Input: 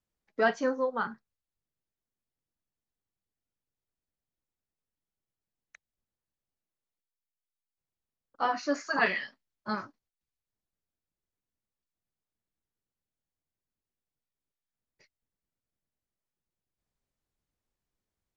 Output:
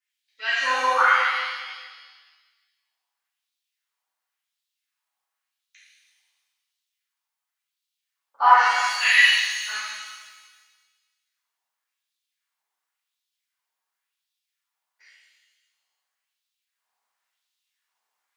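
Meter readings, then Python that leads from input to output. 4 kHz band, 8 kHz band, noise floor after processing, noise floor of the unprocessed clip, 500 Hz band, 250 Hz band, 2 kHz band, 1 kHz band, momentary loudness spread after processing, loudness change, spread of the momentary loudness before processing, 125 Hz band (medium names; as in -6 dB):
+20.0 dB, no reading, -85 dBFS, under -85 dBFS, -3.5 dB, under -15 dB, +13.5 dB, +13.5 dB, 17 LU, +11.5 dB, 17 LU, under -25 dB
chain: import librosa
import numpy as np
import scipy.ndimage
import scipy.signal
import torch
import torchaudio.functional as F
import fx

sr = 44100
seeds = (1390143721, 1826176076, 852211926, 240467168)

y = fx.filter_lfo_highpass(x, sr, shape='sine', hz=0.93, low_hz=830.0, high_hz=3800.0, q=3.5)
y = fx.rev_shimmer(y, sr, seeds[0], rt60_s=1.4, semitones=7, shimmer_db=-8, drr_db=-11.0)
y = F.gain(torch.from_numpy(y), -2.5).numpy()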